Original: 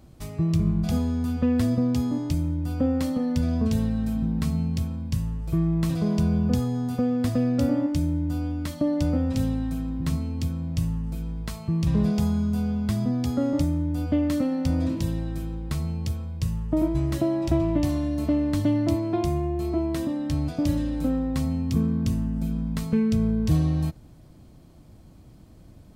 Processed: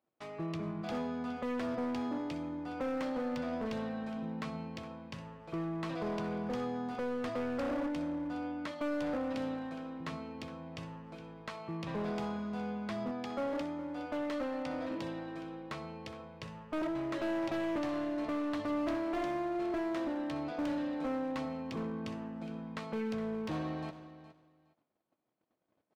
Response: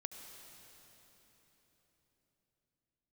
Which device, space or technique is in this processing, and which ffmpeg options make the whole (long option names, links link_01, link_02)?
walkie-talkie: -filter_complex "[0:a]asettb=1/sr,asplit=3[link_01][link_02][link_03];[link_01]atrim=end=13.114[link_04];[link_02]atrim=start=13.11:end=14.91,asetpts=PTS-STARTPTS,afade=type=in:duration=0.004:curve=qsin,afade=type=out:start_time=1.796:duration=0.004:curve=qsin,lowshelf=frequency=450:gain=-5[link_05];[link_03]atrim=start=14.906[link_06];[link_04][link_05]acrossfade=duration=0.004:curve1=hsin:curve2=qsin[link_07];[link_07][link_06]acrossfade=duration=0.004:curve1=qsin:curve2=hsin,highpass=480,lowpass=2500,asoftclip=type=hard:threshold=-33dB,agate=range=-26dB:threshold=-59dB:ratio=16:detection=peak,aecho=1:1:415|830:0.188|0.032,volume=1dB"